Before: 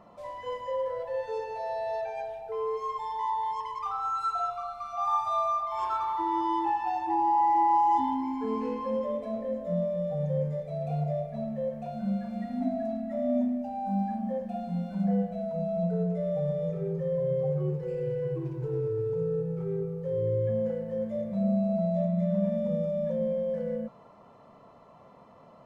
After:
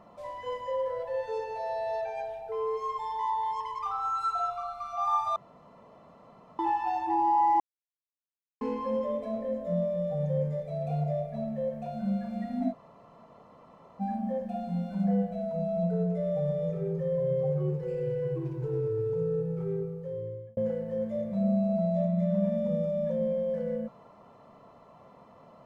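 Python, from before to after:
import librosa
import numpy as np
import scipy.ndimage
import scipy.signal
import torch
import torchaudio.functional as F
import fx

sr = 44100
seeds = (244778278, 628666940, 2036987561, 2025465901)

y = fx.edit(x, sr, fx.room_tone_fill(start_s=5.36, length_s=1.23),
    fx.silence(start_s=7.6, length_s=1.01),
    fx.room_tone_fill(start_s=12.72, length_s=1.29, crossfade_s=0.04),
    fx.fade_out_span(start_s=19.7, length_s=0.87), tone=tone)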